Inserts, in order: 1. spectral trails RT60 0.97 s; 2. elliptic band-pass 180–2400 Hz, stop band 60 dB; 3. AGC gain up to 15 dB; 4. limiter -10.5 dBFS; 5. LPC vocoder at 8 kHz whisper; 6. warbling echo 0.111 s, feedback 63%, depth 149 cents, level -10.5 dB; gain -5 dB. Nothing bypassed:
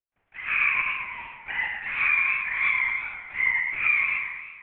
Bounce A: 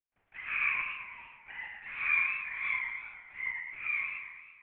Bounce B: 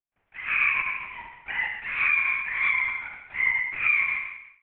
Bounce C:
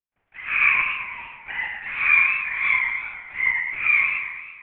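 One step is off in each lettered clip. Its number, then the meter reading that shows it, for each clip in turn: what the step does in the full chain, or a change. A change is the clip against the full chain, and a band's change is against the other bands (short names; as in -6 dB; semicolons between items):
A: 3, crest factor change +4.0 dB; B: 6, momentary loudness spread change +2 LU; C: 4, crest factor change +3.0 dB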